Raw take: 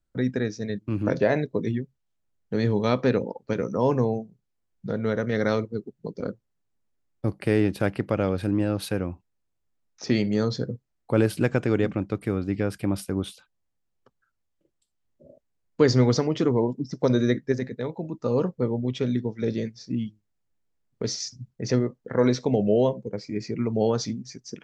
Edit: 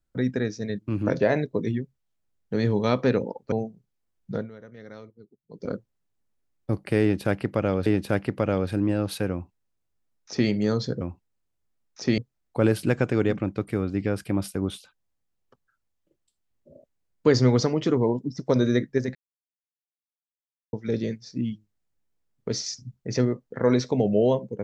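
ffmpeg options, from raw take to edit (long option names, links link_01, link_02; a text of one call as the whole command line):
ffmpeg -i in.wav -filter_complex "[0:a]asplit=9[link_01][link_02][link_03][link_04][link_05][link_06][link_07][link_08][link_09];[link_01]atrim=end=3.522[link_10];[link_02]atrim=start=4.068:end=5.05,asetpts=PTS-STARTPTS,afade=type=out:start_time=0.852:duration=0.13:silence=0.105925[link_11];[link_03]atrim=start=5.05:end=6.05,asetpts=PTS-STARTPTS,volume=-19.5dB[link_12];[link_04]atrim=start=6.05:end=8.412,asetpts=PTS-STARTPTS,afade=type=in:duration=0.13:silence=0.105925[link_13];[link_05]atrim=start=7.568:end=10.722[link_14];[link_06]atrim=start=9.028:end=10.202[link_15];[link_07]atrim=start=10.718:end=17.69,asetpts=PTS-STARTPTS,afade=type=out:start_time=6.968:duration=0.004:curve=hsin[link_16];[link_08]atrim=start=17.69:end=19.27,asetpts=PTS-STARTPTS,volume=0[link_17];[link_09]atrim=start=19.27,asetpts=PTS-STARTPTS,afade=type=in:duration=0.004:curve=hsin[link_18];[link_11][link_12][link_13]concat=n=3:v=0:a=1[link_19];[link_10][link_19]acrossfade=duration=0.004:curve1=hsin:curve2=hsin[link_20];[link_20][link_14]acrossfade=duration=0.004:curve1=hsin:curve2=hsin[link_21];[link_21][link_15]acrossfade=duration=0.004:curve1=hsin:curve2=hsin[link_22];[link_16][link_17][link_18]concat=n=3:v=0:a=1[link_23];[link_22][link_23]acrossfade=duration=0.004:curve1=hsin:curve2=hsin" out.wav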